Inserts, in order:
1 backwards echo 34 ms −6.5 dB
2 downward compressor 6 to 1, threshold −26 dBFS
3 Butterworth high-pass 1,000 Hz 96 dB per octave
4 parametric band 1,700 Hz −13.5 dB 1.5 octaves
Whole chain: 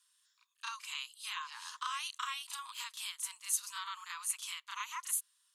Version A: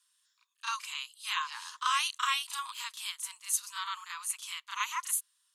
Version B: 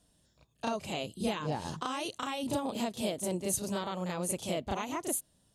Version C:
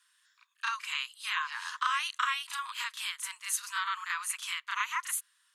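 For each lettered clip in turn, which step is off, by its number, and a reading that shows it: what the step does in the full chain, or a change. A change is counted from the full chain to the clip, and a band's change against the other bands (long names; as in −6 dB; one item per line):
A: 2, average gain reduction 4.0 dB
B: 3, 1 kHz band +5.0 dB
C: 4, 8 kHz band −7.5 dB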